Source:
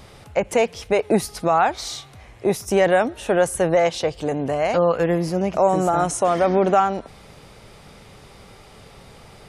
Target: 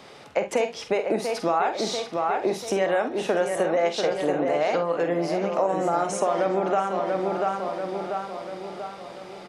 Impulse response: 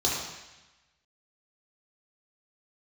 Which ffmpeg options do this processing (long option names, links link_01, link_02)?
-filter_complex "[0:a]asplit=2[link_01][link_02];[link_02]adelay=689,lowpass=frequency=3900:poles=1,volume=-8dB,asplit=2[link_03][link_04];[link_04]adelay=689,lowpass=frequency=3900:poles=1,volume=0.52,asplit=2[link_05][link_06];[link_06]adelay=689,lowpass=frequency=3900:poles=1,volume=0.52,asplit=2[link_07][link_08];[link_08]adelay=689,lowpass=frequency=3900:poles=1,volume=0.52,asplit=2[link_09][link_10];[link_10]adelay=689,lowpass=frequency=3900:poles=1,volume=0.52,asplit=2[link_11][link_12];[link_12]adelay=689,lowpass=frequency=3900:poles=1,volume=0.52[link_13];[link_03][link_05][link_07][link_09][link_11][link_13]amix=inputs=6:normalize=0[link_14];[link_01][link_14]amix=inputs=2:normalize=0,acompressor=threshold=-21dB:ratio=6,acrossover=split=190 7000:gain=0.0631 1 0.251[link_15][link_16][link_17];[link_15][link_16][link_17]amix=inputs=3:normalize=0,asplit=2[link_18][link_19];[link_19]aecho=0:1:47|68:0.355|0.158[link_20];[link_18][link_20]amix=inputs=2:normalize=0,volume=1dB"